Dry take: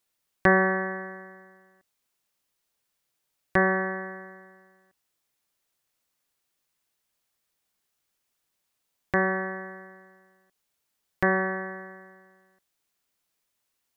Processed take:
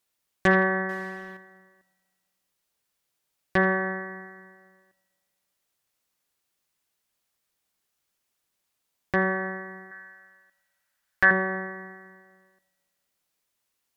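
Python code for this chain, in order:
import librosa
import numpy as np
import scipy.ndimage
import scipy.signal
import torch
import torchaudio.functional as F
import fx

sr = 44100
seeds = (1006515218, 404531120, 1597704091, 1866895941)

y = fx.law_mismatch(x, sr, coded='mu', at=(0.89, 1.37))
y = fx.rev_fdn(y, sr, rt60_s=2.0, lf_ratio=0.95, hf_ratio=0.65, size_ms=30.0, drr_db=15.5)
y = fx.cheby_harmonics(y, sr, harmonics=(2, 5, 7), levels_db=(-19, -15, -23), full_scale_db=-4.5)
y = fx.graphic_eq_15(y, sr, hz=(160, 400, 1600), db=(-11, -8, 11), at=(9.91, 11.31))
y = y * librosa.db_to_amplitude(-3.0)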